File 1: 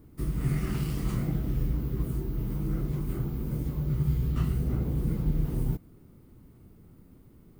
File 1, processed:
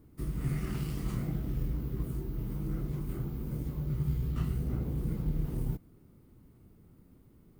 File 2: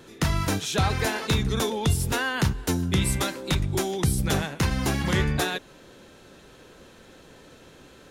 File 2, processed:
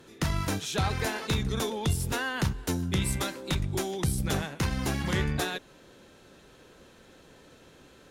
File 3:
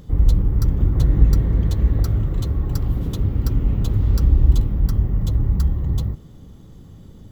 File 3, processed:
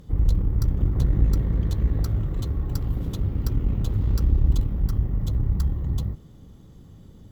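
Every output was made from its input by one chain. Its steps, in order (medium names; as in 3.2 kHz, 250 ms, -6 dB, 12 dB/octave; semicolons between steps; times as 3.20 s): valve stage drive 8 dB, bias 0.55; trim -2 dB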